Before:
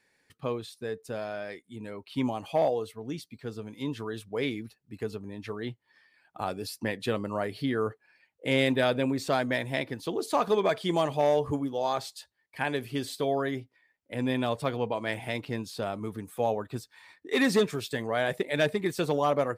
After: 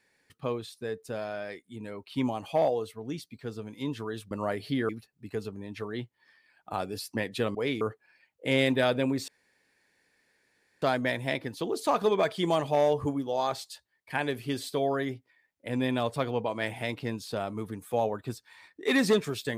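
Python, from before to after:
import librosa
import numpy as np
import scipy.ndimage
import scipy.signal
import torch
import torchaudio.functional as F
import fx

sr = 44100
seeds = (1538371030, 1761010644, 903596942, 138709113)

y = fx.edit(x, sr, fx.swap(start_s=4.31, length_s=0.26, other_s=7.23, other_length_s=0.58),
    fx.insert_room_tone(at_s=9.28, length_s=1.54), tone=tone)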